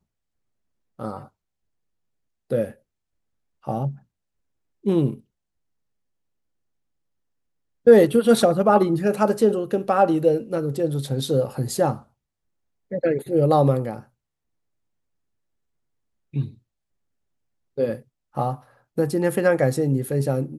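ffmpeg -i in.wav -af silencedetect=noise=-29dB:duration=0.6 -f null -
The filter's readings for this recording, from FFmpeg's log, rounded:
silence_start: 0.00
silence_end: 1.00 | silence_duration: 1.00
silence_start: 1.19
silence_end: 2.51 | silence_duration: 1.32
silence_start: 2.67
silence_end: 3.67 | silence_duration: 1.00
silence_start: 3.91
silence_end: 4.86 | silence_duration: 0.95
silence_start: 5.14
silence_end: 7.87 | silence_duration: 2.73
silence_start: 11.95
silence_end: 12.92 | silence_duration: 0.97
silence_start: 13.99
silence_end: 16.34 | silence_duration: 2.35
silence_start: 16.48
silence_end: 17.78 | silence_duration: 1.30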